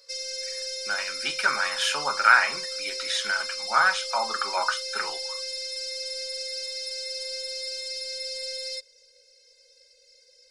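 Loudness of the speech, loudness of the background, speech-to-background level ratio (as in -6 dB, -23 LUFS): -25.0 LUFS, -31.0 LUFS, 6.0 dB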